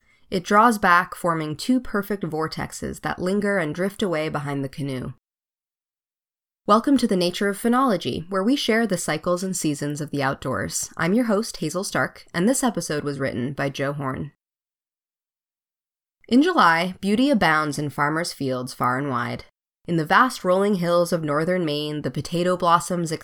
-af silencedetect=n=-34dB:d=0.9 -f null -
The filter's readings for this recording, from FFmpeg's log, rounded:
silence_start: 5.11
silence_end: 6.68 | silence_duration: 1.57
silence_start: 14.28
silence_end: 16.29 | silence_duration: 2.01